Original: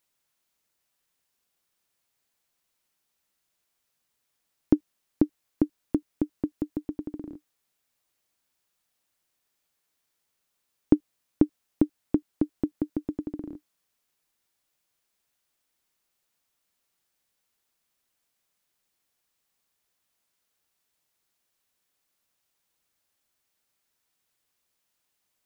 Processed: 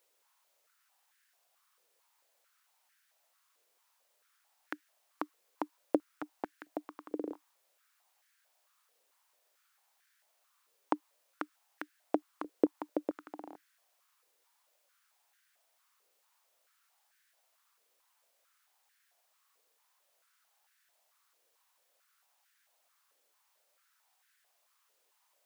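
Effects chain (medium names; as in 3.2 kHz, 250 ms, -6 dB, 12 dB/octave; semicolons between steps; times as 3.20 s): step-sequenced high-pass 4.5 Hz 470–1600 Hz; trim +2.5 dB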